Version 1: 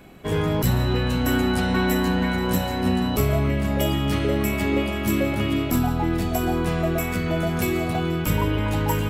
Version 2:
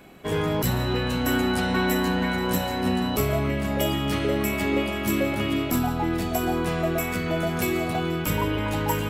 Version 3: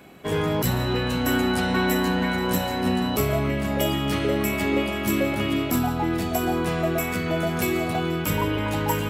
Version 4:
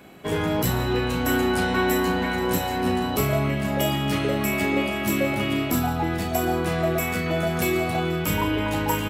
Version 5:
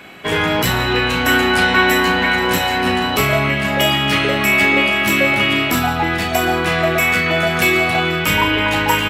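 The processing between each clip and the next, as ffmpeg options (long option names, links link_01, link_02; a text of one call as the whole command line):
ffmpeg -i in.wav -af "lowshelf=frequency=160:gain=-7.5" out.wav
ffmpeg -i in.wav -af "highpass=56,volume=1dB" out.wav
ffmpeg -i in.wav -filter_complex "[0:a]asplit=2[link_01][link_02];[link_02]adelay=35,volume=-7.5dB[link_03];[link_01][link_03]amix=inputs=2:normalize=0" out.wav
ffmpeg -i in.wav -af "equalizer=frequency=2300:width_type=o:width=2.6:gain=12,volume=3dB" out.wav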